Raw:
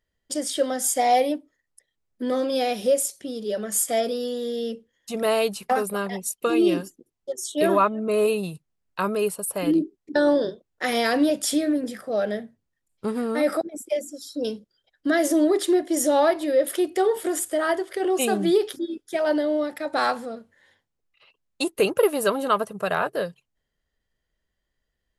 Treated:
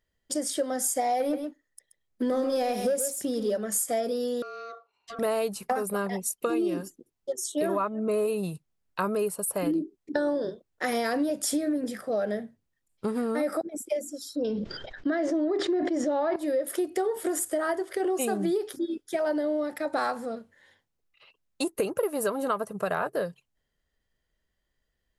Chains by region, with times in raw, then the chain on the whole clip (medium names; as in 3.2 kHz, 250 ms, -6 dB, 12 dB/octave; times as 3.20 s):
1.20–3.57 s: waveshaping leveller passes 1 + delay 129 ms -10 dB
4.42–5.19 s: low-pass 4.2 kHz + ring modulator 920 Hz + compression, threshold -36 dBFS
14.36–16.36 s: Bessel low-pass 3.3 kHz, order 4 + decay stretcher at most 34 dB/s
whole clip: dynamic bell 3.2 kHz, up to -8 dB, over -46 dBFS, Q 1.3; compression, threshold -24 dBFS